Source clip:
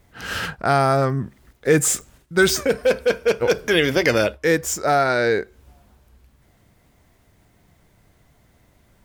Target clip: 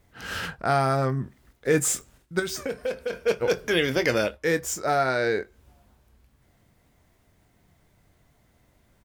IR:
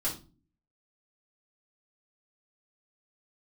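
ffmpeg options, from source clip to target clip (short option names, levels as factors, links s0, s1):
-filter_complex "[0:a]asettb=1/sr,asplit=3[s0][s1][s2];[s0]atrim=end=2.394[s3];[s1]atrim=start=2.39:end=3.13,asetpts=PTS-STARTPTS,afade=t=in:d=0.004:c=qsin,afade=t=out:st=0.736:d=0.004:c=qsin,acompressor=threshold=0.0891:ratio=6[s4];[s2]atrim=start=3.126[s5];[s3][s4]acrossfade=d=0.004:c1=hsin:c2=qsin[s6];[s6][s5]acrossfade=d=0.004:c1=qsin:c2=hsin,asplit=2[s7][s8];[s8]adelay=23,volume=0.266[s9];[s7][s9]amix=inputs=2:normalize=0,volume=0.531"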